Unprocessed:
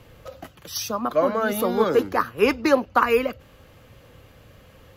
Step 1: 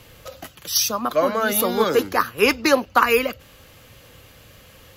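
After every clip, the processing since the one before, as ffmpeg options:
-af "highshelf=f=2.2k:g=11.5"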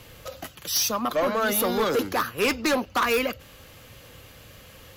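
-af "asoftclip=type=tanh:threshold=-18.5dB"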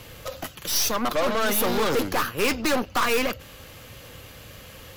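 -af "aeval=exprs='0.126*(cos(1*acos(clip(val(0)/0.126,-1,1)))-cos(1*PI/2))+0.0316*(cos(4*acos(clip(val(0)/0.126,-1,1)))-cos(4*PI/2))+0.0141*(cos(5*acos(clip(val(0)/0.126,-1,1)))-cos(5*PI/2))':c=same"

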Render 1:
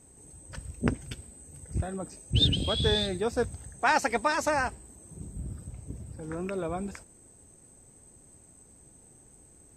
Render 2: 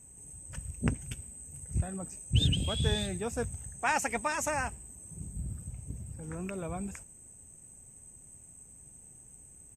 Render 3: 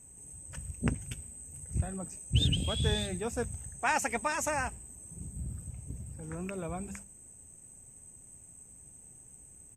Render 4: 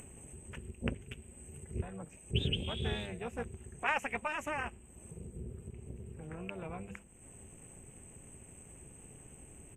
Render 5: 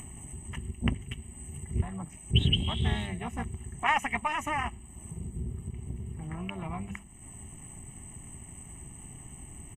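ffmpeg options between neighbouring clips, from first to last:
-af "firequalizer=gain_entry='entry(160,0);entry(320,-8);entry(820,-5);entry(1400,-6);entry(2700,0);entry(4300,-14);entry(6700,4)':delay=0.05:min_phase=1"
-af "bandreject=f=50:t=h:w=6,bandreject=f=100:t=h:w=6,bandreject=f=150:t=h:w=6,bandreject=f=200:t=h:w=6"
-af "highshelf=f=3.6k:t=q:w=3:g=-9,tremolo=f=300:d=0.788,acompressor=mode=upward:threshold=-37dB:ratio=2.5,volume=-2.5dB"
-af "aecho=1:1:1:0.8,volume=4.5dB"

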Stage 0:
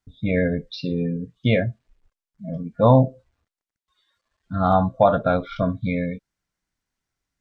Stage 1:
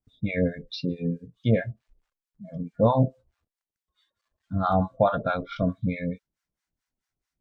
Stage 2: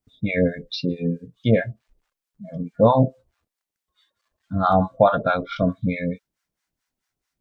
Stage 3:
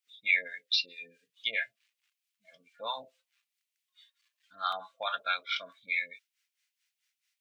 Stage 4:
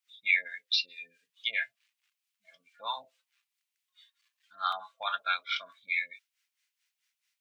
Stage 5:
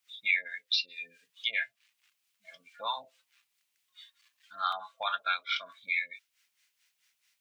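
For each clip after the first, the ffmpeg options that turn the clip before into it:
-filter_complex "[0:a]acrossover=split=720[a][b];[a]aeval=exprs='val(0)*(1-1/2+1/2*cos(2*PI*4.6*n/s))':c=same[c];[b]aeval=exprs='val(0)*(1-1/2-1/2*cos(2*PI*4.6*n/s))':c=same[d];[c][d]amix=inputs=2:normalize=0"
-af "lowshelf=f=130:g=-7,volume=6dB"
-af "highpass=f=2.5k:t=q:w=1.9"
-af "lowshelf=f=660:t=q:w=1.5:g=-8"
-af "acompressor=threshold=-48dB:ratio=1.5,volume=7.5dB"

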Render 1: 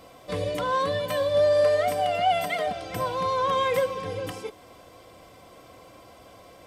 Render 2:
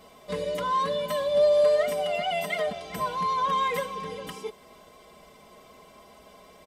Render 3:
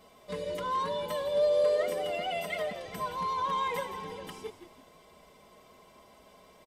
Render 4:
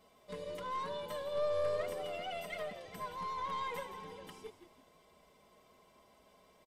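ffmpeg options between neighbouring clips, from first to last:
-af "aecho=1:1:4.8:0.87,volume=-4dB"
-filter_complex "[0:a]asplit=5[a][b][c][d][e];[b]adelay=167,afreqshift=-90,volume=-11.5dB[f];[c]adelay=334,afreqshift=-180,volume=-20.1dB[g];[d]adelay=501,afreqshift=-270,volume=-28.8dB[h];[e]adelay=668,afreqshift=-360,volume=-37.4dB[i];[a][f][g][h][i]amix=inputs=5:normalize=0,volume=-5.5dB"
-af "aeval=exprs='(tanh(12.6*val(0)+0.6)-tanh(0.6))/12.6':c=same,volume=-5dB"

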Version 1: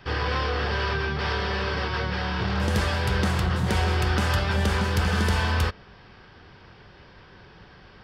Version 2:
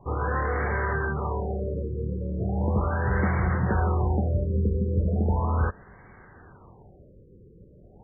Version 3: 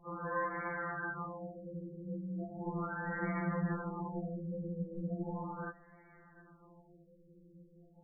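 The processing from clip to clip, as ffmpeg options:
-af "afftfilt=real='re*lt(b*sr/1024,520*pow(2300/520,0.5+0.5*sin(2*PI*0.37*pts/sr)))':imag='im*lt(b*sr/1024,520*pow(2300/520,0.5+0.5*sin(2*PI*0.37*pts/sr)))':win_size=1024:overlap=0.75"
-af "afftfilt=real='re*2.83*eq(mod(b,8),0)':imag='im*2.83*eq(mod(b,8),0)':win_size=2048:overlap=0.75,volume=-6.5dB"

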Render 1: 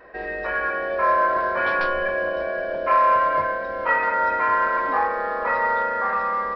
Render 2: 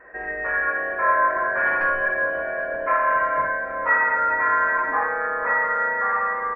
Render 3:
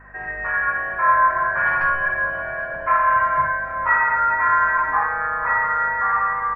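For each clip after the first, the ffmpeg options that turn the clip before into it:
-filter_complex "[0:a]highshelf=f=2.7k:t=q:w=3:g=-13,asplit=2[a][b];[b]aecho=0:1:59|796:0.596|0.158[c];[a][c]amix=inputs=2:normalize=0,volume=-4.5dB"
-af "equalizer=f=125:t=o:w=1:g=11,equalizer=f=250:t=o:w=1:g=-11,equalizer=f=500:t=o:w=1:g=-12,equalizer=f=1k:t=o:w=1:g=3,equalizer=f=2k:t=o:w=1:g=-4,aeval=exprs='val(0)+0.00224*(sin(2*PI*50*n/s)+sin(2*PI*2*50*n/s)/2+sin(2*PI*3*50*n/s)/3+sin(2*PI*4*50*n/s)/4+sin(2*PI*5*50*n/s)/5)':c=same,volume=4.5dB"

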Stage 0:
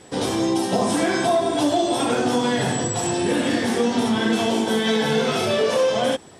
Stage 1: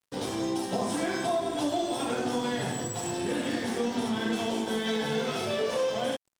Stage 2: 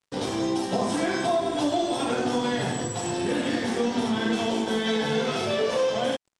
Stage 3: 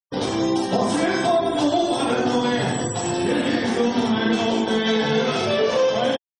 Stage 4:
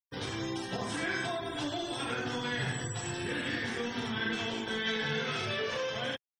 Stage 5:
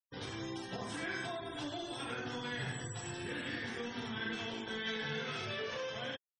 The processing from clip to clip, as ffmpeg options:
-af "aeval=exprs='sgn(val(0))*max(abs(val(0))-0.0126,0)':c=same,volume=-8dB"
-af "lowpass=8k,volume=4dB"
-af "afftfilt=real='re*gte(hypot(re,im),0.01)':imag='im*gte(hypot(re,im),0.01)':win_size=1024:overlap=0.75,volume=5dB"
-af "acrusher=bits=9:mix=0:aa=0.000001,firequalizer=gain_entry='entry(130,0);entry(200,-10);entry(420,-8);entry(620,-12);entry(1600,2);entry(4700,-4)':delay=0.05:min_phase=1,volume=-7dB"
-af "afftfilt=real='re*gte(hypot(re,im),0.00447)':imag='im*gte(hypot(re,im),0.00447)':win_size=1024:overlap=0.75,volume=-6dB"

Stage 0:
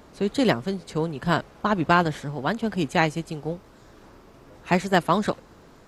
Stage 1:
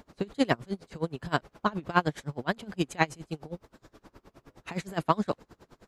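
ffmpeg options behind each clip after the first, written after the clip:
-af "aeval=exprs='val(0)*pow(10,-27*(0.5-0.5*cos(2*PI*9.6*n/s))/20)':c=same"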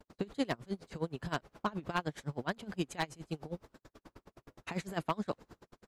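-af "agate=range=-31dB:threshold=-54dB:ratio=16:detection=peak,acompressor=threshold=-32dB:ratio=2,aeval=exprs='0.126*(abs(mod(val(0)/0.126+3,4)-2)-1)':c=same,volume=-1.5dB"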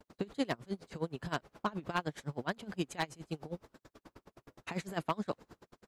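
-af "lowshelf=f=66:g=-6"

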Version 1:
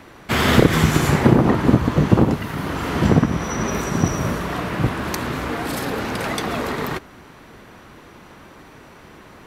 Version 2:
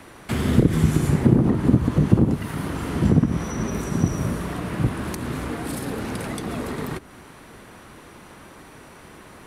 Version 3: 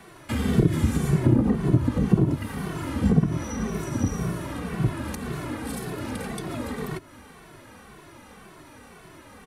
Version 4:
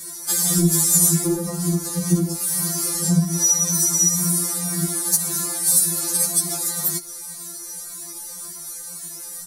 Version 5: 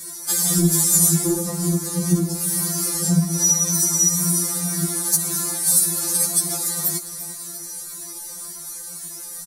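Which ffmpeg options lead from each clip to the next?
-filter_complex "[0:a]equalizer=f=9.6k:t=o:w=0.54:g=11,acrossover=split=380[a][b];[b]acompressor=threshold=-32dB:ratio=5[c];[a][c]amix=inputs=2:normalize=0,volume=-1dB"
-filter_complex "[0:a]asplit=2[a][b];[b]adelay=2.2,afreqshift=-1.9[c];[a][c]amix=inputs=2:normalize=1"
-af "aexciter=amount=8.9:drive=9.6:freq=4.5k,afftfilt=real='re*2.83*eq(mod(b,8),0)':imag='im*2.83*eq(mod(b,8),0)':win_size=2048:overlap=0.75,volume=1.5dB"
-af "aecho=1:1:344|688|1032|1376|1720:0.2|0.106|0.056|0.0297|0.0157"

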